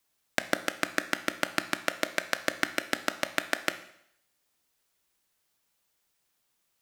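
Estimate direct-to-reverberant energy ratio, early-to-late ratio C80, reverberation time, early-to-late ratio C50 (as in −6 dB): 10.5 dB, 16.5 dB, 0.70 s, 13.5 dB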